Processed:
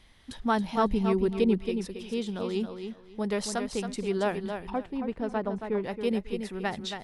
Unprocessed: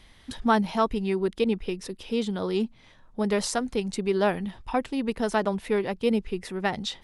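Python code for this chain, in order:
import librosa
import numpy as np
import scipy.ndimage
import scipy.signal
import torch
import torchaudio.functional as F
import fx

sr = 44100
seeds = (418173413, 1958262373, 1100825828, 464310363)

y = fx.low_shelf(x, sr, hz=380.0, db=8.5, at=(0.77, 1.61))
y = fx.lowpass(y, sr, hz=1100.0, slope=6, at=(4.7, 5.84))
y = fx.echo_feedback(y, sr, ms=274, feedback_pct=21, wet_db=-7.5)
y = y * librosa.db_to_amplitude(-4.5)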